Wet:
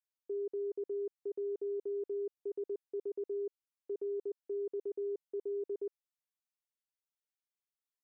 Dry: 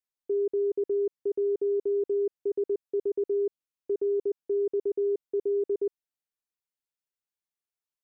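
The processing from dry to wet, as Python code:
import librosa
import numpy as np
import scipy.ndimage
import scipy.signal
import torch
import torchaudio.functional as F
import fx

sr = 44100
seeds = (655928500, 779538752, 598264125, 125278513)

y = fx.low_shelf(x, sr, hz=320.0, db=-11.0)
y = y * 10.0 ** (-6.0 / 20.0)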